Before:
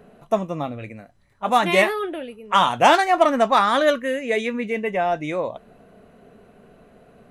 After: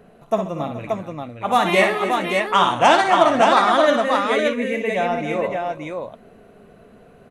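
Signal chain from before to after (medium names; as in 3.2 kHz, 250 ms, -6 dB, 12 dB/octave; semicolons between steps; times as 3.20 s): 1.79–4.15 s: low-pass 9.9 kHz 24 dB/octave; multi-tap echo 58/131/270/424/578 ms -7/-18/-12.5/-17.5/-4 dB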